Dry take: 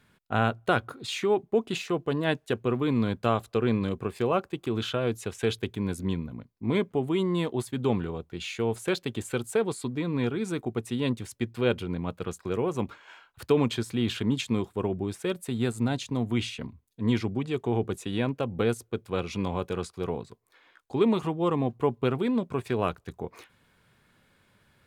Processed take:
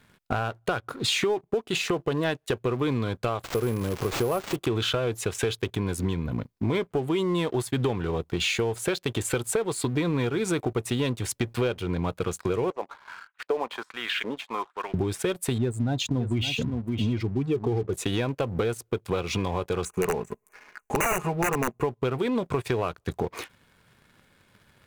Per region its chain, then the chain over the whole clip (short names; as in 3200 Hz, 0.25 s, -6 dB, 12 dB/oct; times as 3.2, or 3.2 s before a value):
3.44–4.56 switching spikes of -22.5 dBFS + de-esser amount 95% + sample-rate reducer 11000 Hz
12.7–14.94 weighting filter A + LFO band-pass saw up 1.3 Hz 530–2300 Hz
15.58–17.93 spectral contrast raised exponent 1.6 + echo 0.565 s -13.5 dB
19.85–21.83 comb 4.8 ms, depth 67% + wrapped overs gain 18 dB + brick-wall FIR band-stop 2900–5800 Hz
whole clip: dynamic EQ 220 Hz, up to -8 dB, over -42 dBFS, Q 1.9; compressor 20:1, threshold -35 dBFS; sample leveller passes 2; gain +6 dB